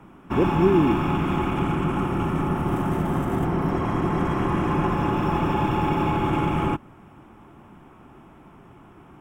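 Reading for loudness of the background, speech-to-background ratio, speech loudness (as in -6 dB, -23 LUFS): -24.0 LUFS, 0.5 dB, -23.5 LUFS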